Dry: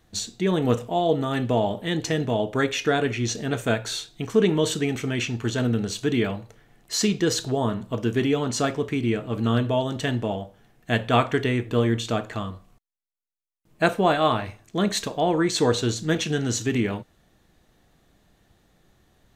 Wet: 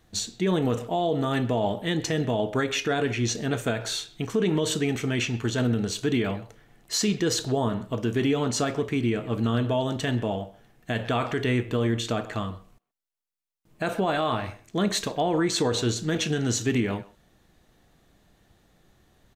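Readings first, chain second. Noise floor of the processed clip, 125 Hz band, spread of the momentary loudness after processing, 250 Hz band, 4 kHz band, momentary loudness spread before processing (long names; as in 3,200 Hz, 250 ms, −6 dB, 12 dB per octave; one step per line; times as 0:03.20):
−63 dBFS, −1.5 dB, 6 LU, −1.5 dB, −1.0 dB, 7 LU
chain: far-end echo of a speakerphone 130 ms, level −19 dB
brickwall limiter −15.5 dBFS, peak gain reduction 10 dB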